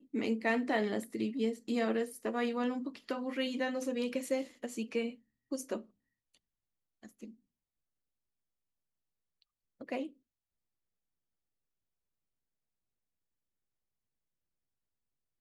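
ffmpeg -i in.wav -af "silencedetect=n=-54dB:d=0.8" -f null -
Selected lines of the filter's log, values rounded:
silence_start: 7.34
silence_end: 9.42 | silence_duration: 2.08
silence_start: 10.12
silence_end: 15.40 | silence_duration: 5.28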